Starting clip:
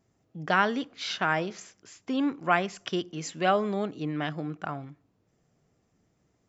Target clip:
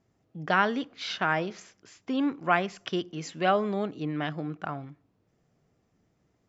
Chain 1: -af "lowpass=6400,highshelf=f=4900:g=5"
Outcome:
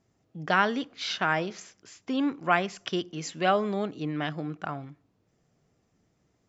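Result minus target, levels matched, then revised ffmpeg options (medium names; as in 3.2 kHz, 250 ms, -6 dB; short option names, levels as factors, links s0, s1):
8 kHz band +4.0 dB
-af "lowpass=6400,highshelf=f=4900:g=-2"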